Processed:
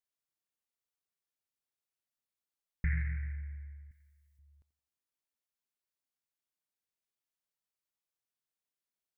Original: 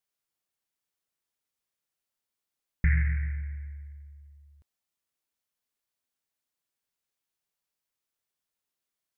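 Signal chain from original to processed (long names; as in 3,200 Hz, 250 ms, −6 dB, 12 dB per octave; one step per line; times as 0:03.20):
0:03.91–0:04.39: spectral tilt +2.5 dB per octave
tape delay 88 ms, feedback 59%, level −14 dB
level −8 dB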